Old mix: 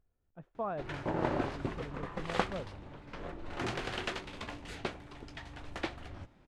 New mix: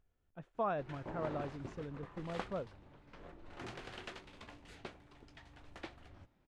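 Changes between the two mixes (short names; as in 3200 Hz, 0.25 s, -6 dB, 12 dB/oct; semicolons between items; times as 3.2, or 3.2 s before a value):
speech: add high shelf 2100 Hz +10.5 dB; background -11.0 dB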